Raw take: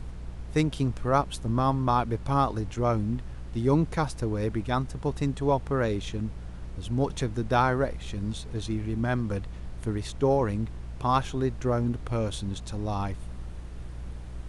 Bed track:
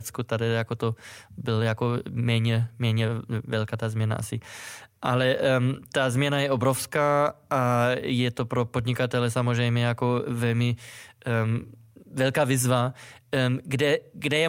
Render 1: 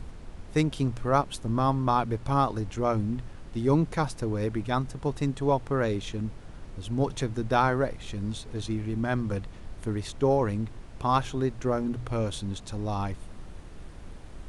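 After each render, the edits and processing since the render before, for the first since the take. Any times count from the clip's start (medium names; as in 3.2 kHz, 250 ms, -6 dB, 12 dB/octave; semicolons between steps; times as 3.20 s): de-hum 60 Hz, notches 3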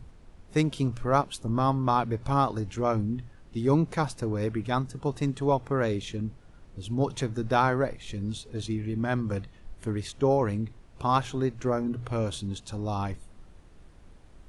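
noise print and reduce 9 dB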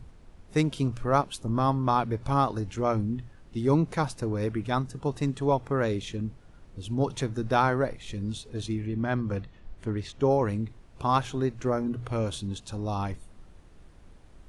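8.87–10.20 s: distance through air 78 m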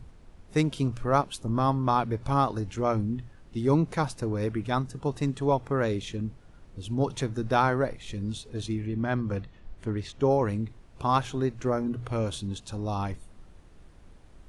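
no audible change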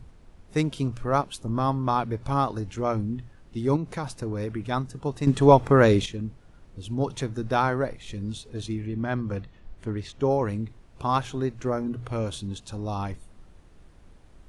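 3.76–4.63 s: compression, threshold -25 dBFS; 5.27–6.06 s: gain +9.5 dB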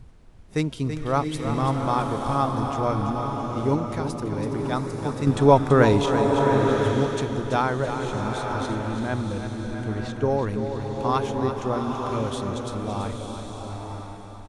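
feedback delay 332 ms, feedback 57%, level -9 dB; swelling reverb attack 960 ms, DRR 3 dB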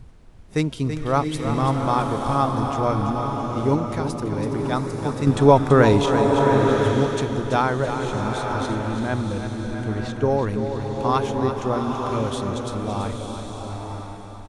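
trim +2.5 dB; peak limiter -2 dBFS, peak gain reduction 2 dB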